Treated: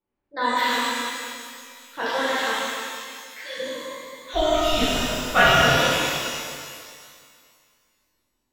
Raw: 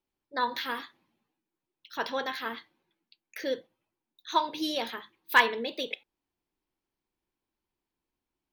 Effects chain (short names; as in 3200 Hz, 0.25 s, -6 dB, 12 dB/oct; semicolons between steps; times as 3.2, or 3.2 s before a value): regenerating reverse delay 0.108 s, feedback 63%, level -9.5 dB; 2.5–3.58 HPF 1300 Hz 12 dB/oct; low-pass opened by the level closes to 1800 Hz, open at -29 dBFS; 4.32–5.62 frequency shift -300 Hz; shimmer reverb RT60 2 s, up +12 st, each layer -8 dB, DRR -10.5 dB; gain -2 dB